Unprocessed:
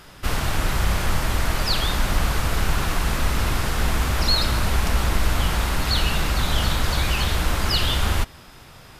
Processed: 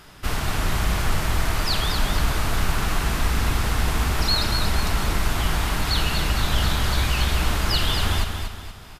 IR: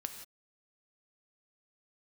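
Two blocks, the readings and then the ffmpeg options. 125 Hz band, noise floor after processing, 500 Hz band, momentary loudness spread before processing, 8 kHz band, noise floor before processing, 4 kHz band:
−0.5 dB, −40 dBFS, −1.5 dB, 4 LU, −0.5 dB, −46 dBFS, −0.5 dB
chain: -filter_complex "[0:a]bandreject=frequency=530:width=12,asplit=2[link_01][link_02];[link_02]aecho=0:1:237|474|711|948|1185:0.473|0.189|0.0757|0.0303|0.0121[link_03];[link_01][link_03]amix=inputs=2:normalize=0,volume=-1.5dB"

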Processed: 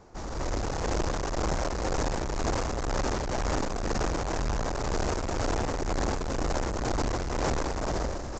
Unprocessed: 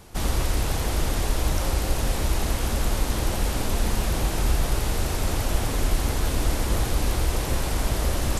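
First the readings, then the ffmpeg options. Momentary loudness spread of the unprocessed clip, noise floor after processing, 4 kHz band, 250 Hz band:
1 LU, −35 dBFS, −7.0 dB, −2.0 dB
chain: -af "adynamicsmooth=sensitivity=2.5:basefreq=3300,equalizer=frequency=3200:width=1:gain=-13.5,alimiter=limit=-17dB:level=0:latency=1:release=26,dynaudnorm=framelen=100:gausssize=11:maxgain=11.5dB,aresample=16000,asoftclip=type=tanh:threshold=-18.5dB,aresample=44100,tremolo=f=2:d=0.37,bass=frequency=250:gain=-8,treble=frequency=4000:gain=10"

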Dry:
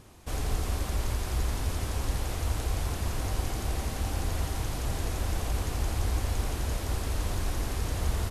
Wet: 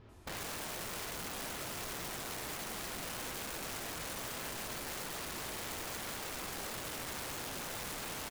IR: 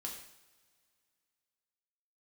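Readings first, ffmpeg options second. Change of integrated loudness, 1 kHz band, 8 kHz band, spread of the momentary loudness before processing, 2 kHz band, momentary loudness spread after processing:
−7.5 dB, −5.0 dB, −2.0 dB, 2 LU, −1.0 dB, 0 LU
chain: -filter_complex "[0:a]highshelf=frequency=4700:gain=-5.5,acrossover=split=4500[link_01][link_02];[link_02]adelay=90[link_03];[link_01][link_03]amix=inputs=2:normalize=0[link_04];[1:a]atrim=start_sample=2205,afade=type=out:start_time=0.14:duration=0.01,atrim=end_sample=6615,asetrate=57330,aresample=44100[link_05];[link_04][link_05]afir=irnorm=-1:irlink=0,aeval=exprs='(mod(79.4*val(0)+1,2)-1)/79.4':channel_layout=same,volume=1dB"

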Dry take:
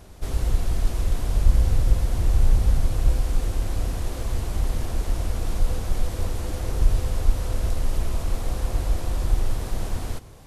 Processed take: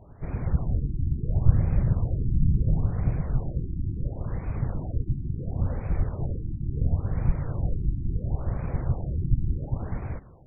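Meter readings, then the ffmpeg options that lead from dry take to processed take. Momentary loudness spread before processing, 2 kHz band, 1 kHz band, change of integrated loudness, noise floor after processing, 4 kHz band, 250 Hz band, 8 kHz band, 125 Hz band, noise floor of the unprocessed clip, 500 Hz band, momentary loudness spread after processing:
8 LU, −9.5 dB, −6.5 dB, −2.0 dB, −39 dBFS, below −40 dB, +3.0 dB, below −40 dB, +1.0 dB, −34 dBFS, −4.5 dB, 8 LU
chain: -af "afftfilt=real='hypot(re,im)*cos(2*PI*random(0))':imag='hypot(re,im)*sin(2*PI*random(1))':win_size=512:overlap=0.75,afftfilt=real='re*lt(b*sr/1024,340*pow(2600/340,0.5+0.5*sin(2*PI*0.72*pts/sr)))':imag='im*lt(b*sr/1024,340*pow(2600/340,0.5+0.5*sin(2*PI*0.72*pts/sr)))':win_size=1024:overlap=0.75,volume=2.5dB"

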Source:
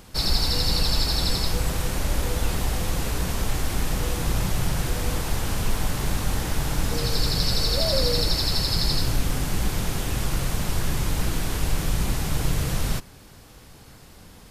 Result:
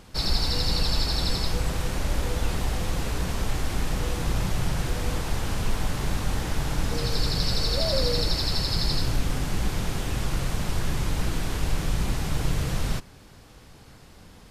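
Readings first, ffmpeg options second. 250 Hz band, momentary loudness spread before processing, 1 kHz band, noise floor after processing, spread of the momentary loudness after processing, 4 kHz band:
−1.5 dB, 5 LU, −1.5 dB, −49 dBFS, 5 LU, −3.0 dB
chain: -af "highshelf=frequency=10000:gain=-10.5,volume=-1.5dB"

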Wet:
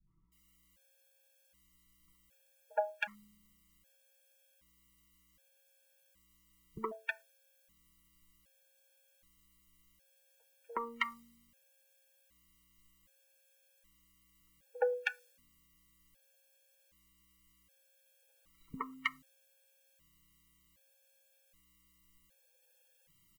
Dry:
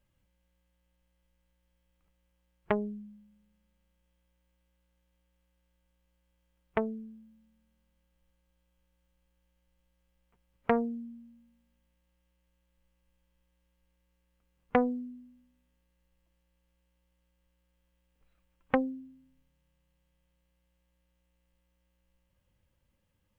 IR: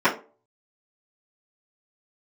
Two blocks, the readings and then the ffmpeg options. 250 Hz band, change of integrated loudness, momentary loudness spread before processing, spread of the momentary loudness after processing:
−19.5 dB, −6.5 dB, 19 LU, 19 LU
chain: -filter_complex "[0:a]highshelf=frequency=3000:gain=-6.5,aecho=1:1:6.1:0.8,acrossover=split=330|780[link_01][link_02][link_03];[link_01]acompressor=threshold=-50dB:ratio=4[link_04];[link_02]acompressor=threshold=-34dB:ratio=4[link_05];[link_03]acompressor=threshold=-33dB:ratio=4[link_06];[link_04][link_05][link_06]amix=inputs=3:normalize=0,acrossover=split=280|1200[link_07][link_08][link_09];[link_08]adelay=70[link_10];[link_09]adelay=320[link_11];[link_07][link_10][link_11]amix=inputs=3:normalize=0,crystalizer=i=9:c=0,asuperstop=centerf=730:order=4:qfactor=6,asplit=2[link_12][link_13];[1:a]atrim=start_sample=2205,atrim=end_sample=4410,asetrate=36162,aresample=44100[link_14];[link_13][link_14]afir=irnorm=-1:irlink=0,volume=-34.5dB[link_15];[link_12][link_15]amix=inputs=2:normalize=0,afftfilt=real='re*gt(sin(2*PI*0.65*pts/sr)*(1-2*mod(floor(b*sr/1024/460),2)),0)':imag='im*gt(sin(2*PI*0.65*pts/sr)*(1-2*mod(floor(b*sr/1024/460),2)),0)':win_size=1024:overlap=0.75,volume=1dB"

